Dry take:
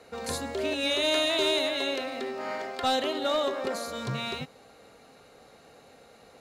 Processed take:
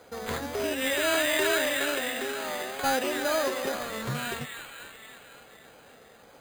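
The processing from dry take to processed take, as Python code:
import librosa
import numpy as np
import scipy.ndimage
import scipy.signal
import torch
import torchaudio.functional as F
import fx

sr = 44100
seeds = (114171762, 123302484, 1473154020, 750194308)

y = fx.peak_eq(x, sr, hz=2600.0, db=-3.0, octaves=0.2)
y = fx.echo_wet_highpass(y, sr, ms=266, feedback_pct=65, hz=2000.0, wet_db=-4.5)
y = fx.wow_flutter(y, sr, seeds[0], rate_hz=2.1, depth_cents=89.0)
y = np.repeat(y[::8], 8)[:len(y)]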